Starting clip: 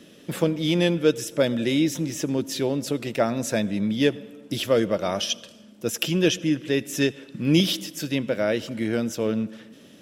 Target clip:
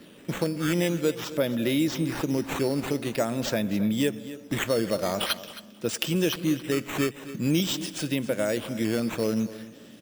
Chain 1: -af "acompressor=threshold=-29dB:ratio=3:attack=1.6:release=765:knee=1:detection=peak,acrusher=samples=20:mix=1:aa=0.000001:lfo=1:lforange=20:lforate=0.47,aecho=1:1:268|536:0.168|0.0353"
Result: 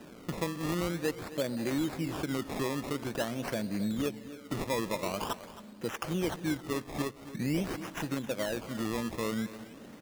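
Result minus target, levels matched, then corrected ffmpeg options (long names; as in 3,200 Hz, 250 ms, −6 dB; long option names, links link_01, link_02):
downward compressor: peak gain reduction +7 dB; sample-and-hold swept by an LFO: distortion +7 dB
-af "acompressor=threshold=-18.5dB:ratio=3:attack=1.6:release=765:knee=1:detection=peak,acrusher=samples=6:mix=1:aa=0.000001:lfo=1:lforange=6:lforate=0.47,aecho=1:1:268|536:0.168|0.0353"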